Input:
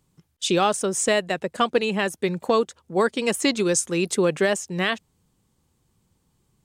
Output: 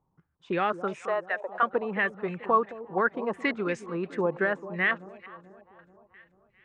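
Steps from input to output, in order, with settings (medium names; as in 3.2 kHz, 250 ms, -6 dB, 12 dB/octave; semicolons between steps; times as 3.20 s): 1.06–1.63 s: high-pass 480 Hz 24 dB/octave; echo whose repeats swap between lows and highs 218 ms, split 820 Hz, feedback 68%, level -13 dB; step-sequenced low-pass 5.7 Hz 900–2200 Hz; trim -8.5 dB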